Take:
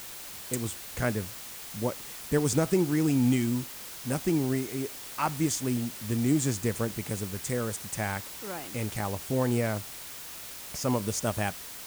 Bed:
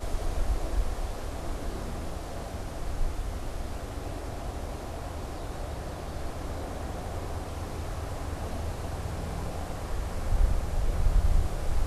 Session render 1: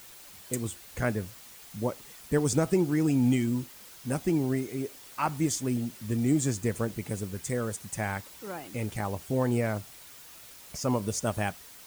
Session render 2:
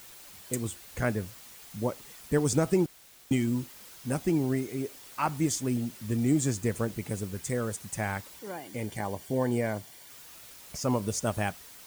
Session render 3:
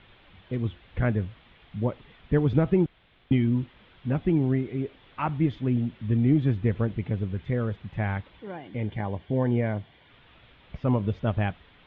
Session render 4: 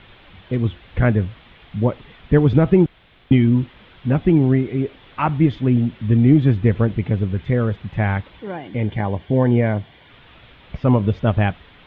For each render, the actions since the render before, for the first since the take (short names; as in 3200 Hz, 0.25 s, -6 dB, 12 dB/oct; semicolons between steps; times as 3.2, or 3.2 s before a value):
denoiser 8 dB, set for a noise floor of -42 dBFS
2.86–3.31 room tone; 8.39–10.1 notch comb 1300 Hz
Chebyshev low-pass 3500 Hz, order 5; low shelf 170 Hz +11 dB
gain +8.5 dB; limiter -2 dBFS, peak gain reduction 2 dB